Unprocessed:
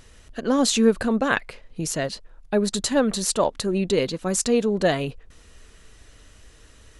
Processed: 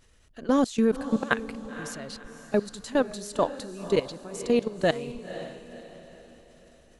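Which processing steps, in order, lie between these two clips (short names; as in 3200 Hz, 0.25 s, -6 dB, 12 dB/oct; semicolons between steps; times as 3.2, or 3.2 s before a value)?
level quantiser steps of 20 dB; on a send: diffused feedback echo 0.516 s, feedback 42%, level -12 dB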